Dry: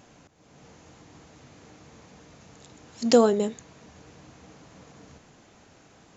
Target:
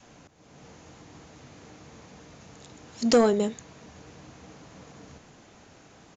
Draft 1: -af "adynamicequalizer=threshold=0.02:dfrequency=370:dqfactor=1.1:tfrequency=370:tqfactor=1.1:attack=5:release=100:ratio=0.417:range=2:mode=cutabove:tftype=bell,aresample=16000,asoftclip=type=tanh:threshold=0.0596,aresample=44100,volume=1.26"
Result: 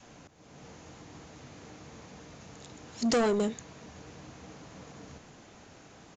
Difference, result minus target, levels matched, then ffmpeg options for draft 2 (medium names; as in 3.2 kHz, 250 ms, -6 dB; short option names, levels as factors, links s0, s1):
saturation: distortion +9 dB
-af "adynamicequalizer=threshold=0.02:dfrequency=370:dqfactor=1.1:tfrequency=370:tqfactor=1.1:attack=5:release=100:ratio=0.417:range=2:mode=cutabove:tftype=bell,aresample=16000,asoftclip=type=tanh:threshold=0.2,aresample=44100,volume=1.26"